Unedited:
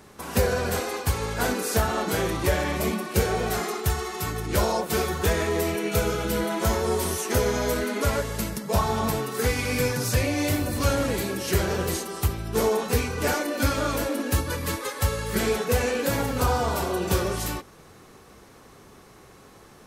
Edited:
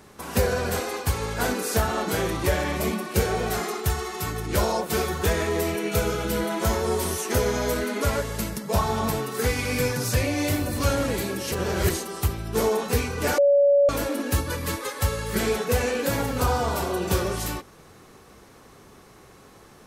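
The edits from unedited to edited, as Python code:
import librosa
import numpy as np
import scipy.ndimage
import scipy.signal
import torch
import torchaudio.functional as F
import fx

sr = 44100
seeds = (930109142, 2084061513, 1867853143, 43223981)

y = fx.edit(x, sr, fx.reverse_span(start_s=11.52, length_s=0.38),
    fx.bleep(start_s=13.38, length_s=0.51, hz=567.0, db=-14.0), tone=tone)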